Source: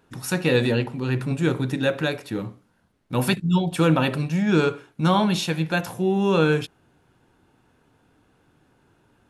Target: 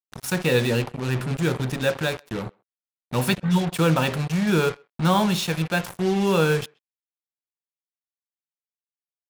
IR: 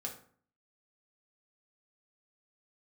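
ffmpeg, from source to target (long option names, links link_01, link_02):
-filter_complex "[0:a]equalizer=frequency=290:width_type=o:width=0.24:gain=-10.5,acrusher=bits=4:mix=0:aa=0.5,asplit=2[link_01][link_02];[link_02]adelay=130,highpass=300,lowpass=3400,asoftclip=type=hard:threshold=-17.5dB,volume=-29dB[link_03];[link_01][link_03]amix=inputs=2:normalize=0"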